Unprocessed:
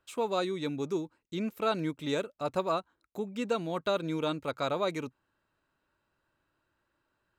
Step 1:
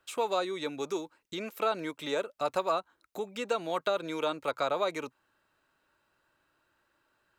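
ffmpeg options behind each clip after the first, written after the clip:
-filter_complex "[0:a]lowshelf=f=310:g=-9,bandreject=f=1k:w=27,acrossover=split=380|1400[a][b][c];[a]acompressor=threshold=-53dB:ratio=4[d];[b]acompressor=threshold=-33dB:ratio=4[e];[c]acompressor=threshold=-45dB:ratio=4[f];[d][e][f]amix=inputs=3:normalize=0,volume=6.5dB"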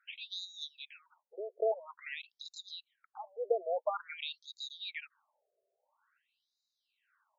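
-af "afftfilt=real='re*between(b*sr/1024,490*pow(5200/490,0.5+0.5*sin(2*PI*0.49*pts/sr))/1.41,490*pow(5200/490,0.5+0.5*sin(2*PI*0.49*pts/sr))*1.41)':imag='im*between(b*sr/1024,490*pow(5200/490,0.5+0.5*sin(2*PI*0.49*pts/sr))/1.41,490*pow(5200/490,0.5+0.5*sin(2*PI*0.49*pts/sr))*1.41)':win_size=1024:overlap=0.75,volume=1dB"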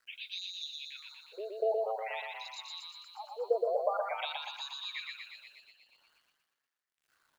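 -filter_complex "[0:a]asplit=2[a][b];[b]aecho=0:1:119|238|357|476|595|714:0.708|0.311|0.137|0.0603|0.0265|0.0117[c];[a][c]amix=inputs=2:normalize=0,acrusher=bits=11:mix=0:aa=0.000001,asplit=2[d][e];[e]asplit=5[f][g][h][i][j];[f]adelay=240,afreqshift=110,volume=-8.5dB[k];[g]adelay=480,afreqshift=220,volume=-14.9dB[l];[h]adelay=720,afreqshift=330,volume=-21.3dB[m];[i]adelay=960,afreqshift=440,volume=-27.6dB[n];[j]adelay=1200,afreqshift=550,volume=-34dB[o];[k][l][m][n][o]amix=inputs=5:normalize=0[p];[d][p]amix=inputs=2:normalize=0"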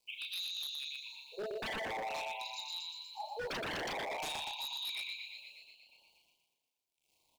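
-filter_complex "[0:a]asuperstop=centerf=1500:order=12:qfactor=1.2,asplit=2[a][b];[b]adelay=35,volume=-4dB[c];[a][c]amix=inputs=2:normalize=0,aeval=exprs='0.0178*(abs(mod(val(0)/0.0178+3,4)-2)-1)':c=same,volume=1dB"

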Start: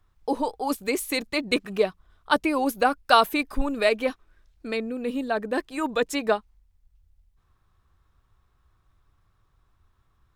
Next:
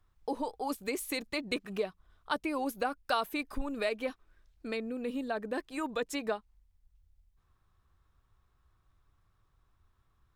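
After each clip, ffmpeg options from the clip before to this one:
-af "acompressor=threshold=-28dB:ratio=2,volume=-5dB"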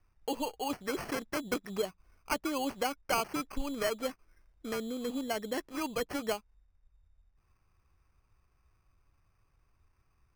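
-af "acrusher=samples=12:mix=1:aa=0.000001"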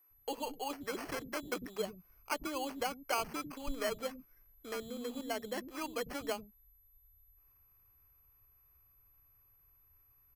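-filter_complex "[0:a]aeval=exprs='val(0)+0.000794*sin(2*PI*12000*n/s)':c=same,acrossover=split=260[a][b];[a]adelay=100[c];[c][b]amix=inputs=2:normalize=0,volume=-3.5dB"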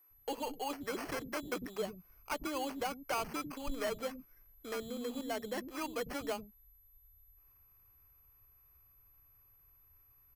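-af "asoftclip=type=tanh:threshold=-30dB,volume=2dB"

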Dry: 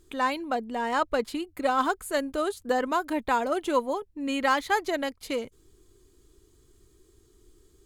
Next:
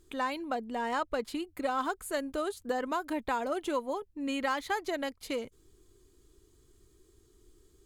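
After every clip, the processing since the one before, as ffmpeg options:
-af "acompressor=threshold=-26dB:ratio=2.5,volume=-3dB"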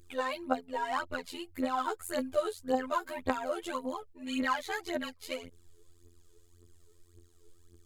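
-af "afftfilt=real='hypot(re,im)*cos(PI*b)':imag='0':win_size=2048:overlap=0.75,aphaser=in_gain=1:out_gain=1:delay=2.4:decay=0.7:speed=1.8:type=triangular"

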